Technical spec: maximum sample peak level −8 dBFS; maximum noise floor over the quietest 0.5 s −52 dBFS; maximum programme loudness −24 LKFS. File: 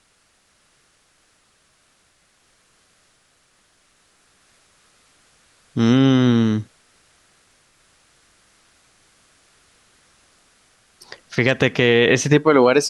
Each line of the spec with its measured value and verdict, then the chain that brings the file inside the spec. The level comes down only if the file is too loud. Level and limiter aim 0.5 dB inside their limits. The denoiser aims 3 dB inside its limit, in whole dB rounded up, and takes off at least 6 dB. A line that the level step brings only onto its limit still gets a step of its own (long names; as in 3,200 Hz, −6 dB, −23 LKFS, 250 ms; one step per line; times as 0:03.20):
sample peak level −3.0 dBFS: out of spec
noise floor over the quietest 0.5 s −61 dBFS: in spec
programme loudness −16.5 LKFS: out of spec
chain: level −8 dB